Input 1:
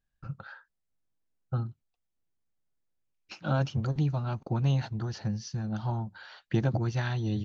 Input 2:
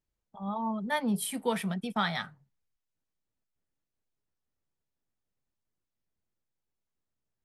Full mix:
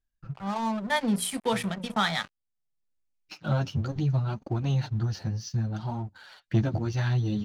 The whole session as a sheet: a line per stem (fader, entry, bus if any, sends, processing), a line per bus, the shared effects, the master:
-1.5 dB, 0.00 s, no send, bass shelf 240 Hz +6 dB; flange 0.66 Hz, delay 2.5 ms, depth 10 ms, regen +8%; auto duck -11 dB, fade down 0.70 s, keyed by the second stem
+1.5 dB, 0.00 s, no send, high-pass 60 Hz 24 dB/octave; hum notches 60/120/180/240/300/360/420/480/540 Hz; crossover distortion -44.5 dBFS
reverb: none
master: low-pass 8.4 kHz 12 dB/octave; treble shelf 3.8 kHz +6 dB; waveshaping leveller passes 1

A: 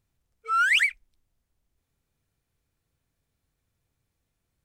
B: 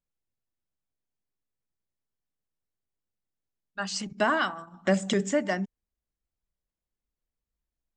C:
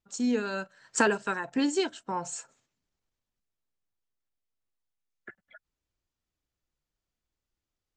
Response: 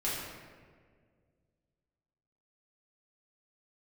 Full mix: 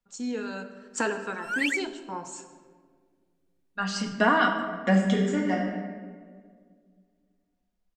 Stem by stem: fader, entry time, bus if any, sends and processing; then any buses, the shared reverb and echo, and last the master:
-10.5 dB, 0.90 s, no send, comb 2.6 ms, depth 99%
0.0 dB, 0.00 s, send -7.5 dB, low-pass 3.4 kHz 6 dB/octave; comb 4.2 ms, depth 52%; auto duck -13 dB, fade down 0.55 s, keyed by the third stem
-6.0 dB, 0.00 s, send -10.5 dB, none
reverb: on, RT60 1.8 s, pre-delay 4 ms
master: hum notches 50/100/150/200 Hz

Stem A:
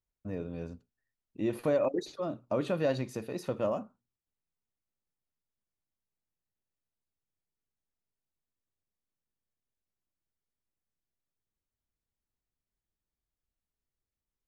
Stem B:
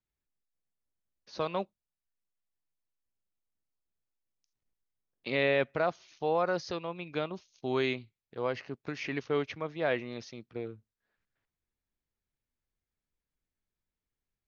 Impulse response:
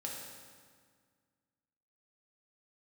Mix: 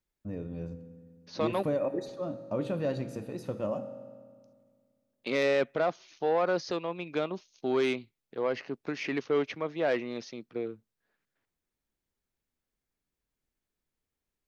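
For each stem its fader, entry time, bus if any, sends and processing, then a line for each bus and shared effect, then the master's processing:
-7.5 dB, 0.00 s, send -6.5 dB, none
+2.0 dB, 0.00 s, no send, saturation -23 dBFS, distortion -14 dB; high-pass 240 Hz 12 dB/octave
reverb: on, RT60 1.8 s, pre-delay 3 ms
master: bass shelf 390 Hz +7 dB

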